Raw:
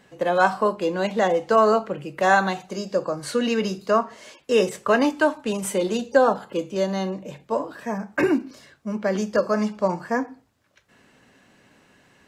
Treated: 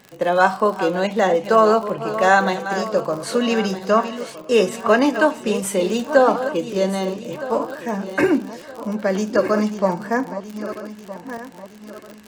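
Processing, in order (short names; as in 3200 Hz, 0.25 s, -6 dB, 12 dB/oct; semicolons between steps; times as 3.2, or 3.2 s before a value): regenerating reverse delay 0.632 s, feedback 58%, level -11 dB; crackle 66/s -31 dBFS; gain +3 dB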